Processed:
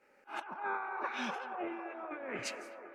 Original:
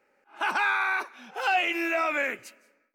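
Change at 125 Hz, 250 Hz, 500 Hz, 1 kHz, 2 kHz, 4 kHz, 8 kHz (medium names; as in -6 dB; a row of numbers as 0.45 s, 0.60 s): no reading, -7.0 dB, -9.0 dB, -10.5 dB, -15.5 dB, -12.0 dB, -2.5 dB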